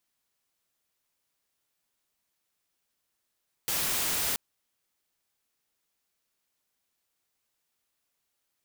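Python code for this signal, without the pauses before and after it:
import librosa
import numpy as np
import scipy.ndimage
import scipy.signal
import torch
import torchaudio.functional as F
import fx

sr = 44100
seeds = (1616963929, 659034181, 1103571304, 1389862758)

y = fx.noise_colour(sr, seeds[0], length_s=0.68, colour='white', level_db=-29.0)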